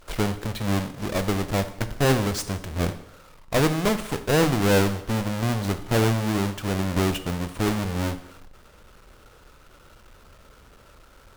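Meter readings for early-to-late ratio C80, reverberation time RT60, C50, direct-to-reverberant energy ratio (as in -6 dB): 15.0 dB, 0.80 s, 12.5 dB, 10.0 dB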